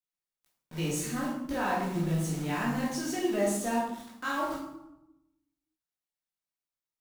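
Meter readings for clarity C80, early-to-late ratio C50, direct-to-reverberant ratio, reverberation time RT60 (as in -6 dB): 5.5 dB, 2.0 dB, -6.0 dB, 0.90 s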